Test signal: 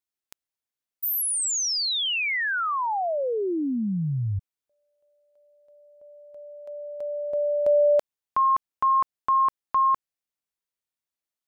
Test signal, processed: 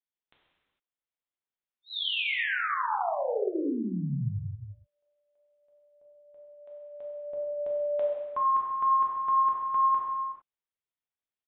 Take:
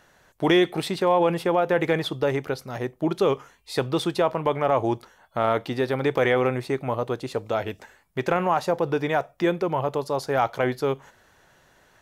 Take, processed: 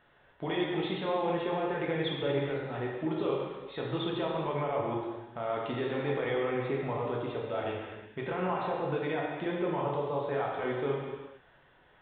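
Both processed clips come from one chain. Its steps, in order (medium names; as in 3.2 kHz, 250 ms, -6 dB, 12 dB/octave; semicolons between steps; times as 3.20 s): peak limiter -18 dBFS; resampled via 8 kHz; gated-style reverb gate 480 ms falling, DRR -3.5 dB; trim -8.5 dB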